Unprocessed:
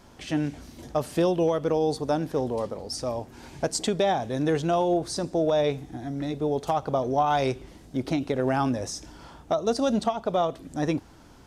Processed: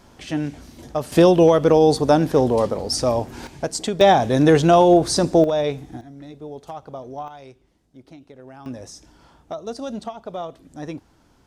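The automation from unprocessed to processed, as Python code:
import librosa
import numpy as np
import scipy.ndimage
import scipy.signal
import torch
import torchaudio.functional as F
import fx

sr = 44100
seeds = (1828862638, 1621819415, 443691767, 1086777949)

y = fx.gain(x, sr, db=fx.steps((0.0, 2.0), (1.12, 10.0), (3.47, 1.5), (4.01, 10.5), (5.44, 2.0), (6.01, -9.0), (7.28, -17.5), (8.66, -6.0)))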